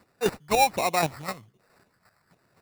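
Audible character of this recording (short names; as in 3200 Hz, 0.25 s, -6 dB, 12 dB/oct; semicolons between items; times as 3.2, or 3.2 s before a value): phasing stages 8, 1.3 Hz, lowest notch 340–3300 Hz; chopped level 3.9 Hz, depth 60%, duty 15%; aliases and images of a low sample rate 3200 Hz, jitter 0%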